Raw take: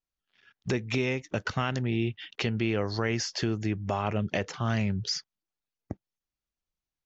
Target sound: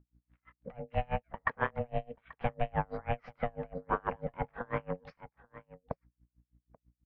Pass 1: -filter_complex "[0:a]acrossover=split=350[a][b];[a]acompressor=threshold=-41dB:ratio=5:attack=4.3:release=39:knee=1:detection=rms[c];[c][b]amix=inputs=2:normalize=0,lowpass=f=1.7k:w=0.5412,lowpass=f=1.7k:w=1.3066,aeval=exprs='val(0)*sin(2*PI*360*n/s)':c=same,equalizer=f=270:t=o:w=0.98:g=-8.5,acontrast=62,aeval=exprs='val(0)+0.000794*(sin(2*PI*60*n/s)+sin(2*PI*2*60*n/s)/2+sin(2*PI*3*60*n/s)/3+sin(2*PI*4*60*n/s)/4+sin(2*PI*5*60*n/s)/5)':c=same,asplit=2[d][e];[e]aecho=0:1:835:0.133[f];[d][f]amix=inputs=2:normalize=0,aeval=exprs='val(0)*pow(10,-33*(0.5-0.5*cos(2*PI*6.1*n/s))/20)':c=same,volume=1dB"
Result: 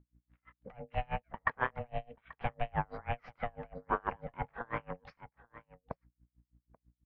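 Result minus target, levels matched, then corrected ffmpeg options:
compressor: peak gain reduction +8.5 dB
-filter_complex "[0:a]acrossover=split=350[a][b];[a]acompressor=threshold=-30.5dB:ratio=5:attack=4.3:release=39:knee=1:detection=rms[c];[c][b]amix=inputs=2:normalize=0,lowpass=f=1.7k:w=0.5412,lowpass=f=1.7k:w=1.3066,aeval=exprs='val(0)*sin(2*PI*360*n/s)':c=same,equalizer=f=270:t=o:w=0.98:g=-8.5,acontrast=62,aeval=exprs='val(0)+0.000794*(sin(2*PI*60*n/s)+sin(2*PI*2*60*n/s)/2+sin(2*PI*3*60*n/s)/3+sin(2*PI*4*60*n/s)/4+sin(2*PI*5*60*n/s)/5)':c=same,asplit=2[d][e];[e]aecho=0:1:835:0.133[f];[d][f]amix=inputs=2:normalize=0,aeval=exprs='val(0)*pow(10,-33*(0.5-0.5*cos(2*PI*6.1*n/s))/20)':c=same,volume=1dB"

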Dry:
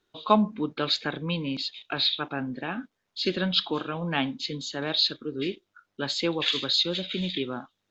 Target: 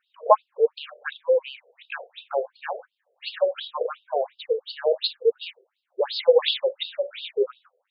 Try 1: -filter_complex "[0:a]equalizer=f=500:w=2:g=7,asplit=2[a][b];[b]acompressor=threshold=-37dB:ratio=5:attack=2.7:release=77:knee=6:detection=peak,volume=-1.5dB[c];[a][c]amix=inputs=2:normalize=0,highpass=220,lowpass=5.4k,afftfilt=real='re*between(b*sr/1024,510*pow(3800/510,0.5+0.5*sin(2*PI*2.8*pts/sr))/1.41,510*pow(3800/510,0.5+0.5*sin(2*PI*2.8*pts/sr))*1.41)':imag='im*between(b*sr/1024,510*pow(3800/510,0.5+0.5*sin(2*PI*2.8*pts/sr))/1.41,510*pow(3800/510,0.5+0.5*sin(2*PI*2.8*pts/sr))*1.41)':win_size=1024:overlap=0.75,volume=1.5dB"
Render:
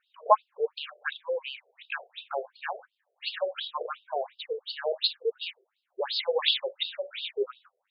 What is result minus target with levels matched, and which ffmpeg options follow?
500 Hz band -3.0 dB
-filter_complex "[0:a]equalizer=f=500:w=2:g=19,asplit=2[a][b];[b]acompressor=threshold=-37dB:ratio=5:attack=2.7:release=77:knee=6:detection=peak,volume=-1.5dB[c];[a][c]amix=inputs=2:normalize=0,highpass=220,lowpass=5.4k,afftfilt=real='re*between(b*sr/1024,510*pow(3800/510,0.5+0.5*sin(2*PI*2.8*pts/sr))/1.41,510*pow(3800/510,0.5+0.5*sin(2*PI*2.8*pts/sr))*1.41)':imag='im*between(b*sr/1024,510*pow(3800/510,0.5+0.5*sin(2*PI*2.8*pts/sr))/1.41,510*pow(3800/510,0.5+0.5*sin(2*PI*2.8*pts/sr))*1.41)':win_size=1024:overlap=0.75,volume=1.5dB"

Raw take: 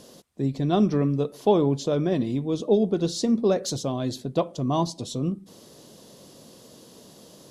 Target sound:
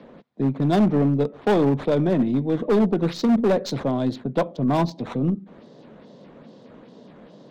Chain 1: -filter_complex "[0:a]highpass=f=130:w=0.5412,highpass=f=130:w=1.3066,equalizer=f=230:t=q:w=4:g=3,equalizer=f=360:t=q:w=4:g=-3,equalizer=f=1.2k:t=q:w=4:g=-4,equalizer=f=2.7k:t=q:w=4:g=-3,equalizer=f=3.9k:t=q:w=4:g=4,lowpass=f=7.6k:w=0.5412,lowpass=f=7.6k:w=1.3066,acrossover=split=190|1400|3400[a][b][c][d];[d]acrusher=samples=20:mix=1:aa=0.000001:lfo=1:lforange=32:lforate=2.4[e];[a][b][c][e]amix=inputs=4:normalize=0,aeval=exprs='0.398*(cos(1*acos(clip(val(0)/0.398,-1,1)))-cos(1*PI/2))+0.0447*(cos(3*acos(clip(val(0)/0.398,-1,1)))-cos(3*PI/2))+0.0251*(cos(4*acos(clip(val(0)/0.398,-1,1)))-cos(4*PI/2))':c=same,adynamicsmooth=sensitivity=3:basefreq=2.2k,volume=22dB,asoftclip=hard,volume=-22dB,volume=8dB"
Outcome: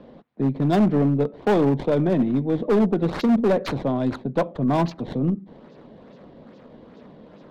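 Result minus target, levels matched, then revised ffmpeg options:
decimation with a swept rate: distortion +22 dB
-filter_complex "[0:a]highpass=f=130:w=0.5412,highpass=f=130:w=1.3066,equalizer=f=230:t=q:w=4:g=3,equalizer=f=360:t=q:w=4:g=-3,equalizer=f=1.2k:t=q:w=4:g=-4,equalizer=f=2.7k:t=q:w=4:g=-3,equalizer=f=3.9k:t=q:w=4:g=4,lowpass=f=7.6k:w=0.5412,lowpass=f=7.6k:w=1.3066,acrossover=split=190|1400|3400[a][b][c][d];[d]acrusher=samples=5:mix=1:aa=0.000001:lfo=1:lforange=8:lforate=2.4[e];[a][b][c][e]amix=inputs=4:normalize=0,aeval=exprs='0.398*(cos(1*acos(clip(val(0)/0.398,-1,1)))-cos(1*PI/2))+0.0447*(cos(3*acos(clip(val(0)/0.398,-1,1)))-cos(3*PI/2))+0.0251*(cos(4*acos(clip(val(0)/0.398,-1,1)))-cos(4*PI/2))':c=same,adynamicsmooth=sensitivity=3:basefreq=2.2k,volume=22dB,asoftclip=hard,volume=-22dB,volume=8dB"

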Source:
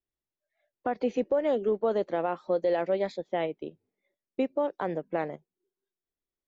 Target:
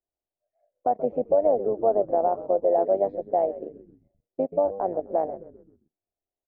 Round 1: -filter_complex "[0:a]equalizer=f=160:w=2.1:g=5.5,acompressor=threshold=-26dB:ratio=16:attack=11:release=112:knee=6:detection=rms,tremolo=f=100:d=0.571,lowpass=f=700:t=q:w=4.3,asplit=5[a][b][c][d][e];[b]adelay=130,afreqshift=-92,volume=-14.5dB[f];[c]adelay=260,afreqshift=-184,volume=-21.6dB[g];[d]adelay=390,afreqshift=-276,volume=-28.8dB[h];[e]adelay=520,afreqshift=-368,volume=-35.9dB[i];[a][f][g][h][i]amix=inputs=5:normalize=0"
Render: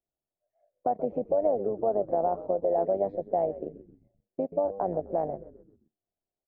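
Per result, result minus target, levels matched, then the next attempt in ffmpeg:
125 Hz band +6.5 dB; compressor: peak gain reduction +6 dB
-filter_complex "[0:a]equalizer=f=160:w=2.1:g=-6,acompressor=threshold=-26dB:ratio=16:attack=11:release=112:knee=6:detection=rms,tremolo=f=100:d=0.571,lowpass=f=700:t=q:w=4.3,asplit=5[a][b][c][d][e];[b]adelay=130,afreqshift=-92,volume=-14.5dB[f];[c]adelay=260,afreqshift=-184,volume=-21.6dB[g];[d]adelay=390,afreqshift=-276,volume=-28.8dB[h];[e]adelay=520,afreqshift=-368,volume=-35.9dB[i];[a][f][g][h][i]amix=inputs=5:normalize=0"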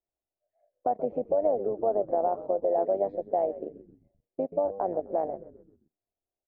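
compressor: peak gain reduction +6 dB
-filter_complex "[0:a]equalizer=f=160:w=2.1:g=-6,tremolo=f=100:d=0.571,lowpass=f=700:t=q:w=4.3,asplit=5[a][b][c][d][e];[b]adelay=130,afreqshift=-92,volume=-14.5dB[f];[c]adelay=260,afreqshift=-184,volume=-21.6dB[g];[d]adelay=390,afreqshift=-276,volume=-28.8dB[h];[e]adelay=520,afreqshift=-368,volume=-35.9dB[i];[a][f][g][h][i]amix=inputs=5:normalize=0"

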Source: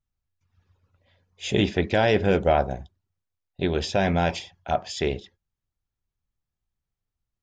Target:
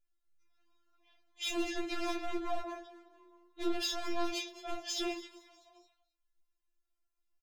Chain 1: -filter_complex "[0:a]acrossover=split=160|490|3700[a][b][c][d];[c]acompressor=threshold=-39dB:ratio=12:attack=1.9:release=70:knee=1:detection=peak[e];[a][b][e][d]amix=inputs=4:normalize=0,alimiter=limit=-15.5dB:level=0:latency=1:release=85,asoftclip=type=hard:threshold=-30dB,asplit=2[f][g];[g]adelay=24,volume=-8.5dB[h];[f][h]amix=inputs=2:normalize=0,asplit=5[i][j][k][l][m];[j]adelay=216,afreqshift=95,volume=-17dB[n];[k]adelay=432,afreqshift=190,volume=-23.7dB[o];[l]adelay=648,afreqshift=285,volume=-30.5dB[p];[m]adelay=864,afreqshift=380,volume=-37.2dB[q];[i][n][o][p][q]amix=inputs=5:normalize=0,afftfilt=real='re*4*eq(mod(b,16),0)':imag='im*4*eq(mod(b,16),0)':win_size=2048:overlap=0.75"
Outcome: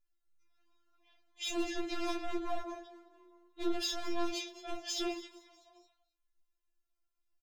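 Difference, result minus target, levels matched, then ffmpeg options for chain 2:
compressor: peak gain reduction +6 dB
-filter_complex "[0:a]acrossover=split=160|490|3700[a][b][c][d];[c]acompressor=threshold=-32.5dB:ratio=12:attack=1.9:release=70:knee=1:detection=peak[e];[a][b][e][d]amix=inputs=4:normalize=0,alimiter=limit=-15.5dB:level=0:latency=1:release=85,asoftclip=type=hard:threshold=-30dB,asplit=2[f][g];[g]adelay=24,volume=-8.5dB[h];[f][h]amix=inputs=2:normalize=0,asplit=5[i][j][k][l][m];[j]adelay=216,afreqshift=95,volume=-17dB[n];[k]adelay=432,afreqshift=190,volume=-23.7dB[o];[l]adelay=648,afreqshift=285,volume=-30.5dB[p];[m]adelay=864,afreqshift=380,volume=-37.2dB[q];[i][n][o][p][q]amix=inputs=5:normalize=0,afftfilt=real='re*4*eq(mod(b,16),0)':imag='im*4*eq(mod(b,16),0)':win_size=2048:overlap=0.75"

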